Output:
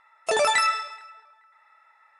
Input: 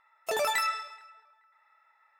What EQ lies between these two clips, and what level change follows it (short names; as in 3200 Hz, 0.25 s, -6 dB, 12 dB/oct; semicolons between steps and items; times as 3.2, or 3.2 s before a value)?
brick-wall FIR low-pass 11000 Hz; +7.0 dB